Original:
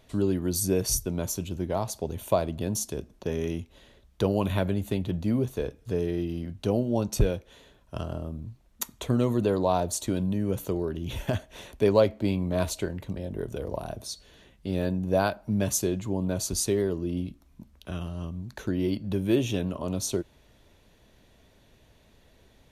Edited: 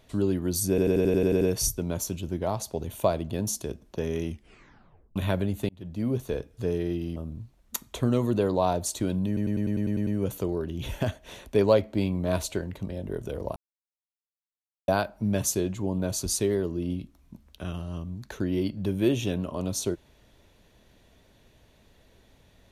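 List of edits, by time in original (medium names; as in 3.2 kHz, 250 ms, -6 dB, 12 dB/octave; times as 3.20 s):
0.69 s: stutter 0.09 s, 9 plays
3.56 s: tape stop 0.88 s
4.97–5.46 s: fade in
6.44–8.23 s: delete
10.34 s: stutter 0.10 s, 9 plays
13.83–15.15 s: mute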